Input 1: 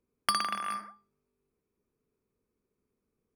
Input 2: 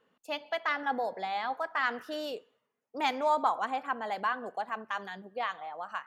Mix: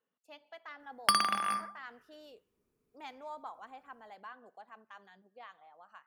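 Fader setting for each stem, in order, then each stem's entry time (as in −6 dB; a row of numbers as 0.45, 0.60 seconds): +2.0, −17.5 decibels; 0.80, 0.00 seconds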